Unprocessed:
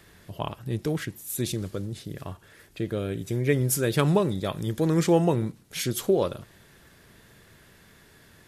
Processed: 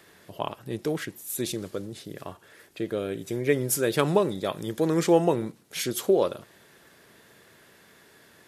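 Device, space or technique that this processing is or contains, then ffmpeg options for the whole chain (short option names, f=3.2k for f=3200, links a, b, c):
filter by subtraction: -filter_complex "[0:a]asplit=2[a][b];[b]lowpass=450,volume=-1[c];[a][c]amix=inputs=2:normalize=0"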